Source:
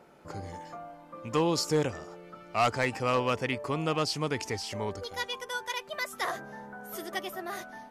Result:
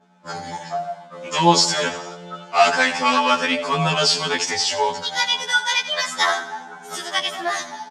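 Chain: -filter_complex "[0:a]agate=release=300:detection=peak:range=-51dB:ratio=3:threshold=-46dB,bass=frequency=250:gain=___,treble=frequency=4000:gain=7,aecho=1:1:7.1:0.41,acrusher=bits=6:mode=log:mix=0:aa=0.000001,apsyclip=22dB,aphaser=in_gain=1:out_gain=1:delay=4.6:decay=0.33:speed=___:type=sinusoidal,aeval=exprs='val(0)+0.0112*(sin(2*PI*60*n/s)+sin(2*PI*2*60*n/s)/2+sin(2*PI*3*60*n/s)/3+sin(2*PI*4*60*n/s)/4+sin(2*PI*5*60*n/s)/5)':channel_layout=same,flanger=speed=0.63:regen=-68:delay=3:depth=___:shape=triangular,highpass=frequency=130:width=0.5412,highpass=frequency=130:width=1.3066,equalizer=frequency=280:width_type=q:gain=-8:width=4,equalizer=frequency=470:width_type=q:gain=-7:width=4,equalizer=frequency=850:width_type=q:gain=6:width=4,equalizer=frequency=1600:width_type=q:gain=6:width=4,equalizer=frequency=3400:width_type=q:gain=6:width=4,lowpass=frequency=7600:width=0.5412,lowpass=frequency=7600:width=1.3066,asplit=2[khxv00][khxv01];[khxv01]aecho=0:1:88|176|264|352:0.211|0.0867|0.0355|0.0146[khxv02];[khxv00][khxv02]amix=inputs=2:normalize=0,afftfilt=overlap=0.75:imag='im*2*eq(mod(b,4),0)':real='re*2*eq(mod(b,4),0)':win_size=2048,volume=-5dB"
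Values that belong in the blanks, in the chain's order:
-5, 1.3, 1.7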